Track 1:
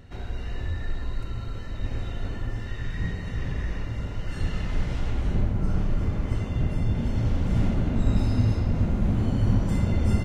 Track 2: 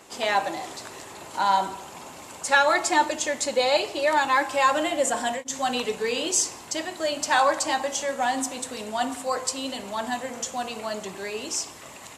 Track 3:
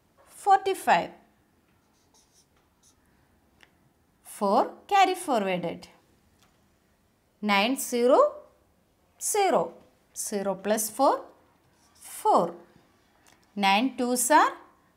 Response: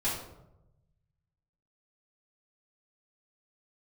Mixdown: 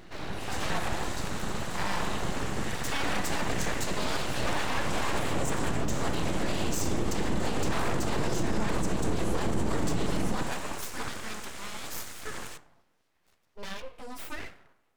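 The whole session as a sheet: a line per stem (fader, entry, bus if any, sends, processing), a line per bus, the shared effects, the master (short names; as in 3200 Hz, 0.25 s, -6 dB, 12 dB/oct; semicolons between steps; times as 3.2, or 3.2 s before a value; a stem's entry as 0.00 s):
+2.5 dB, 0.00 s, bus A, send -7 dB, HPF 170 Hz 6 dB/oct
-11.0 dB, 0.40 s, no bus, send -23.5 dB, per-bin compression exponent 0.6
-7.0 dB, 0.00 s, bus A, send -18 dB, compressor 3:1, threshold -26 dBFS, peak gain reduction 9.5 dB; ensemble effect
bus A: 0.0 dB, limiter -24.5 dBFS, peak gain reduction 12 dB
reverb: on, RT60 0.90 s, pre-delay 3 ms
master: full-wave rectifier; limiter -17.5 dBFS, peak gain reduction 9.5 dB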